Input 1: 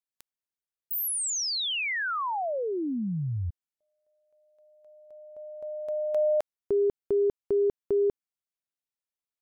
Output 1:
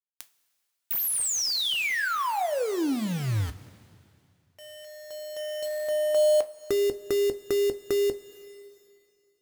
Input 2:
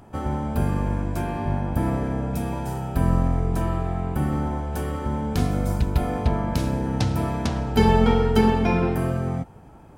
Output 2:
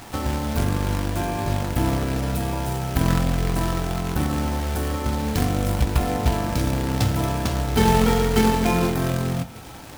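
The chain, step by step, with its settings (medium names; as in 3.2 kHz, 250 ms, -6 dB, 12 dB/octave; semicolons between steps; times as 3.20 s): in parallel at -2.5 dB: compression 12:1, threshold -31 dBFS; on the sum: companded quantiser 4-bit; two-slope reverb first 0.22 s, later 2.5 s, from -20 dB, DRR 8.5 dB; tape noise reduction on one side only encoder only; trim -1.5 dB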